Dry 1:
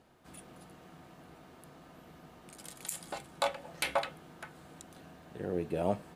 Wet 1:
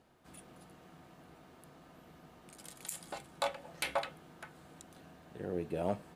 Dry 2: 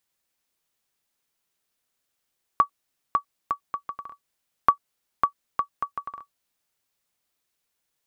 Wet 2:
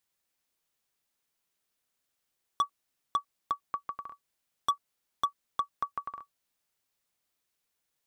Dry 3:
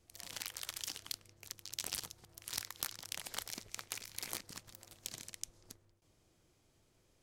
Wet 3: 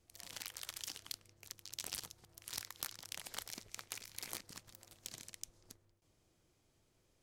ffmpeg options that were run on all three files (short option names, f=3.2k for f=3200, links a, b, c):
-af "asoftclip=type=hard:threshold=-18.5dB,volume=-3dB"